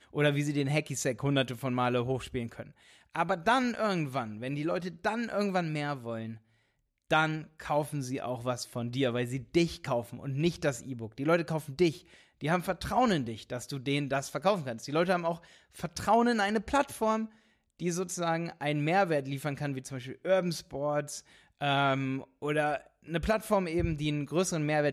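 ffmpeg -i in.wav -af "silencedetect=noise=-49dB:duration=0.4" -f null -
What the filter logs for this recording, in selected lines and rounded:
silence_start: 6.38
silence_end: 7.10 | silence_duration: 0.73
silence_start: 17.29
silence_end: 17.80 | silence_duration: 0.51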